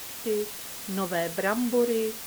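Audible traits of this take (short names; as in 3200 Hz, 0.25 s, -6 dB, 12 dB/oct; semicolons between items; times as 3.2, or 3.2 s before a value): a quantiser's noise floor 6-bit, dither triangular; Vorbis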